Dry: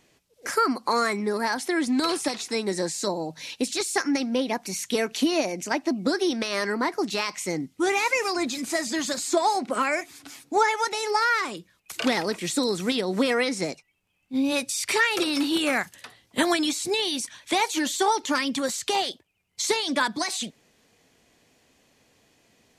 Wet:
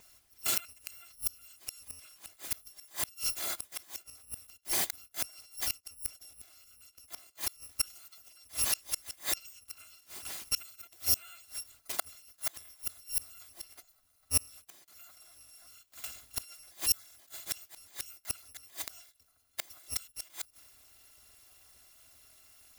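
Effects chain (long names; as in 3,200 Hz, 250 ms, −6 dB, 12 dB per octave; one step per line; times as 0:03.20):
samples in bit-reversed order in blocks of 256 samples
gate with flip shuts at −18 dBFS, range −35 dB
transient designer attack −2 dB, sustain +3 dB
level +3 dB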